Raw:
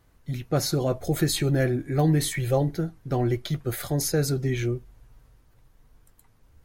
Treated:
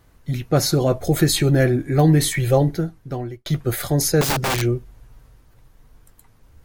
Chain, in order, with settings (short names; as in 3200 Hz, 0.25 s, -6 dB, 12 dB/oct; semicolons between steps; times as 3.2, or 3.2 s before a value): 2.66–3.46 fade out; 4.21–4.62 wrapped overs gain 22.5 dB; gain +6.5 dB